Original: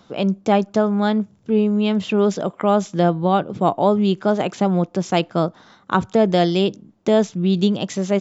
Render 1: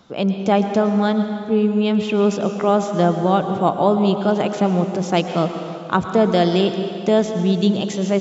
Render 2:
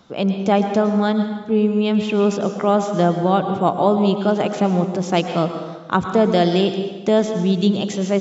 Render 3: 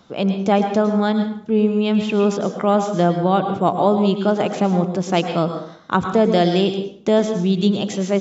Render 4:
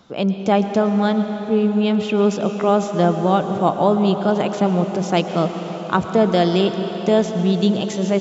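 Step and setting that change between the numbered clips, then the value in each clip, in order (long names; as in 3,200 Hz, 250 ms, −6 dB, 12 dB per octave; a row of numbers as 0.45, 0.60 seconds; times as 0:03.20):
dense smooth reverb, RT60: 2.4, 1.2, 0.54, 5.2 seconds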